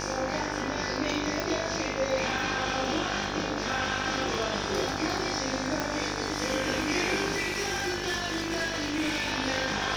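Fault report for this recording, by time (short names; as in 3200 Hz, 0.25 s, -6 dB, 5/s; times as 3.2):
buzz 50 Hz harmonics 35 -35 dBFS
crackle 24/s -37 dBFS
1.4 pop
5.8 pop -14 dBFS
7.33–9.32 clipped -25 dBFS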